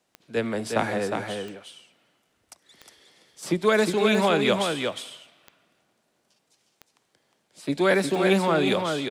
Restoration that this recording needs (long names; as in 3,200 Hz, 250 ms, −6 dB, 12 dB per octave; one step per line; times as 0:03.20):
click removal
echo removal 359 ms −5 dB